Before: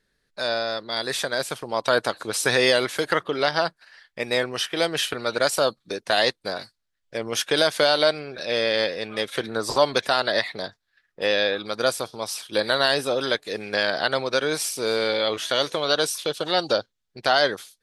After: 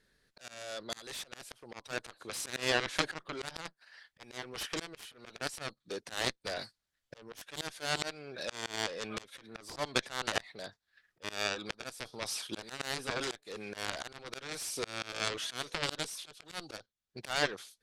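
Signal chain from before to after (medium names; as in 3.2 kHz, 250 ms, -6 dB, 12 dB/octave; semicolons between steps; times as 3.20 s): Chebyshev shaper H 5 -23 dB, 7 -11 dB, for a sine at -5 dBFS; slow attack 791 ms; low-pass that closes with the level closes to 1.7 kHz, closed at -23.5 dBFS; trim +4.5 dB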